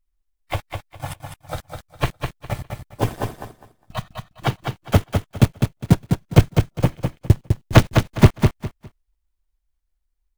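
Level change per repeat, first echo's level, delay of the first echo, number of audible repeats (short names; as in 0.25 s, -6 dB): -13.0 dB, -5.5 dB, 0.204 s, 3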